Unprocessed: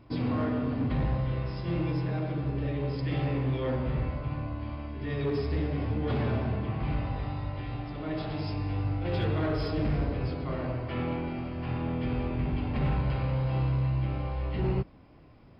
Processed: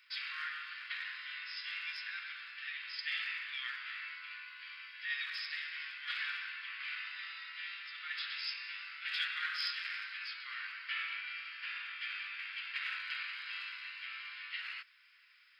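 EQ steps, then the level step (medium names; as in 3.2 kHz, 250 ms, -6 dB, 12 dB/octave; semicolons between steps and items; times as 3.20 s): steep high-pass 1.5 kHz 48 dB/octave; +7.0 dB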